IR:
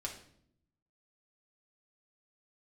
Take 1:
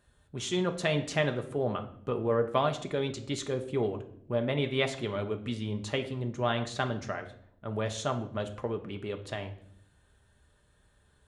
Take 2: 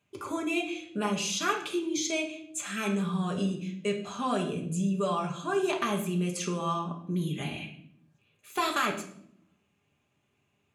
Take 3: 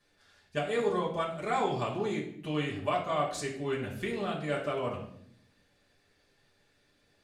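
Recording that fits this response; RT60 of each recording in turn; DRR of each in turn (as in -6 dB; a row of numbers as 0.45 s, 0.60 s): 2; 0.70 s, 0.65 s, 0.65 s; 5.0 dB, -1.5 dB, -6.5 dB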